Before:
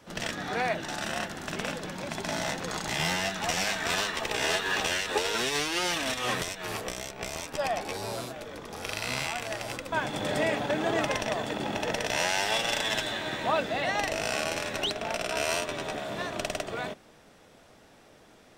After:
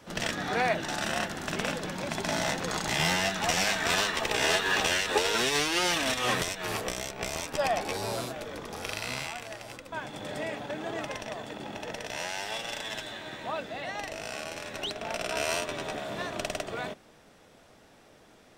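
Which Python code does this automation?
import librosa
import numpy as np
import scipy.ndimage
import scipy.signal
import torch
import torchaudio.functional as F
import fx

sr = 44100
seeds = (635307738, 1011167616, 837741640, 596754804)

y = fx.gain(x, sr, db=fx.line((8.63, 2.0), (9.6, -7.5), (14.52, -7.5), (15.26, -1.0)))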